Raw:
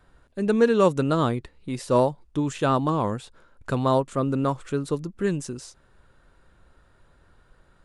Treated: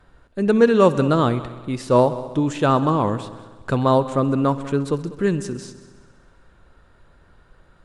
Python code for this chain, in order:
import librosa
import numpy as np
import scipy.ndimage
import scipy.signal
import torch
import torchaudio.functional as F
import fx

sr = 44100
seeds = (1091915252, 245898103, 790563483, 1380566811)

p1 = fx.high_shelf(x, sr, hz=8800.0, db=-9.5)
p2 = p1 + fx.echo_heads(p1, sr, ms=65, heads='all three', feedback_pct=51, wet_db=-20, dry=0)
y = p2 * 10.0 ** (4.5 / 20.0)